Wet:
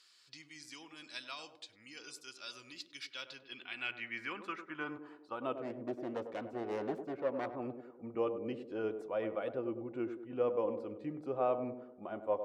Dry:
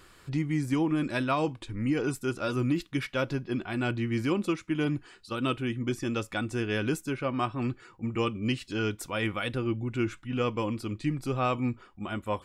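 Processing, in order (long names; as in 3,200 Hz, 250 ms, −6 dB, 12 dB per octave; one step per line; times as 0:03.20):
0:05.58–0:07.56: phase distortion by the signal itself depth 0.38 ms
feedback echo with a band-pass in the loop 99 ms, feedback 55%, band-pass 410 Hz, level −7 dB
band-pass filter sweep 4,800 Hz → 580 Hz, 0:03.04–0:05.77
level +1 dB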